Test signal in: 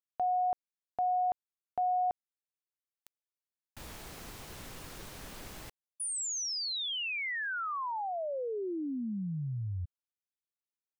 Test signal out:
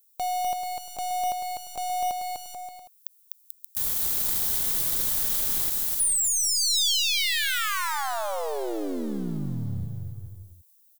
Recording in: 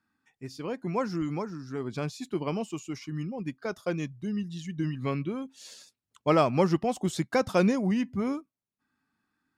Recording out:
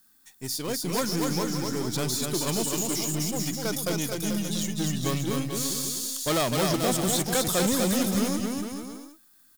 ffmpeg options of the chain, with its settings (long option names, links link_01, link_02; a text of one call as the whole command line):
ffmpeg -i in.wav -filter_complex "[0:a]aeval=exprs='if(lt(val(0),0),0.447*val(0),val(0))':channel_layout=same,acontrast=75,aeval=exprs='(tanh(12.6*val(0)+0.2)-tanh(0.2))/12.6':channel_layout=same,aexciter=amount=11.3:drive=5.3:freq=3900,highshelf=frequency=3800:width_type=q:width=1.5:gain=-8,aecho=1:1:250|437.5|578.1|683.6|762.7:0.631|0.398|0.251|0.158|0.1,acrossover=split=3400[link_01][link_02];[link_02]acompressor=threshold=-35dB:ratio=4:attack=1:release=60[link_03];[link_01][link_03]amix=inputs=2:normalize=0,aemphasis=mode=production:type=50kf" out.wav